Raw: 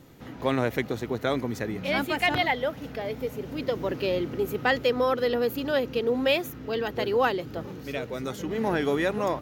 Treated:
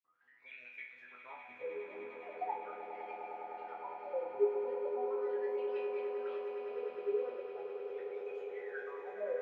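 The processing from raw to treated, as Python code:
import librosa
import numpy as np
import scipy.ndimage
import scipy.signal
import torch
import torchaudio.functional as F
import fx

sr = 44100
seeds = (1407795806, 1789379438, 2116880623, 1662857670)

y = fx.spec_dropout(x, sr, seeds[0], share_pct=21)
y = fx.wah_lfo(y, sr, hz=0.39, low_hz=400.0, high_hz=2500.0, q=21.0)
y = fx.resonator_bank(y, sr, root=40, chord='major', decay_s=0.58)
y = fx.echo_swell(y, sr, ms=102, loudest=8, wet_db=-11.0)
y = y * librosa.db_to_amplitude(13.5)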